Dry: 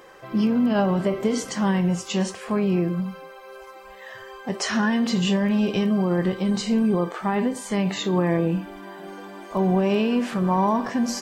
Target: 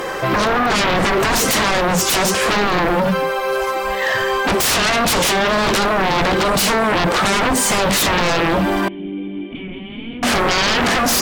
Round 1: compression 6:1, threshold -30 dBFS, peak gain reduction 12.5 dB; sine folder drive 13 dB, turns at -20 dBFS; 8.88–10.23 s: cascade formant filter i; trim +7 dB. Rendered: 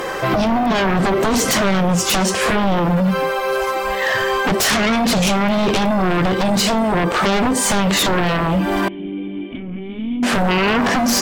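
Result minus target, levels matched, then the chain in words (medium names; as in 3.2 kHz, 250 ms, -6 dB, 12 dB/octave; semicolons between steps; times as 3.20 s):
compression: peak gain reduction +5.5 dB
compression 6:1, threshold -23.5 dBFS, peak gain reduction 7 dB; sine folder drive 13 dB, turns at -20 dBFS; 8.88–10.23 s: cascade formant filter i; trim +7 dB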